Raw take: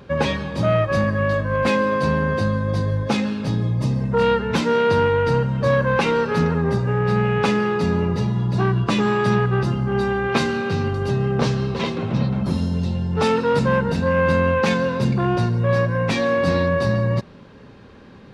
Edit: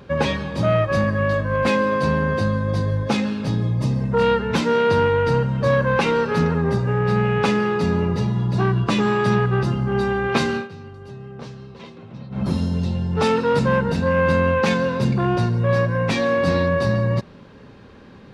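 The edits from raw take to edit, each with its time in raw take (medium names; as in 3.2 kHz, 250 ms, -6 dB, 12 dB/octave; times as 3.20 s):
10.56–12.42 s: dip -16 dB, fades 0.12 s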